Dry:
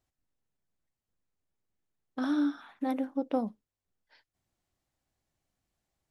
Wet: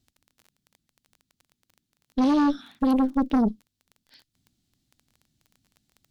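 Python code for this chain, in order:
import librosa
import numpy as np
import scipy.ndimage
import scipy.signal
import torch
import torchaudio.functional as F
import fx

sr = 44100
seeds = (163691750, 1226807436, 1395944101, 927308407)

y = fx.graphic_eq_10(x, sr, hz=(125, 250, 500, 1000, 2000, 4000), db=(5, 11, -11, -11, -5, 7))
y = fx.dmg_crackle(y, sr, seeds[0], per_s=17.0, level_db=-47.0)
y = fx.cheby_harmonics(y, sr, harmonics=(5, 6), levels_db=(-13, -14), full_scale_db=-15.0)
y = F.gain(torch.from_numpy(y), 1.0).numpy()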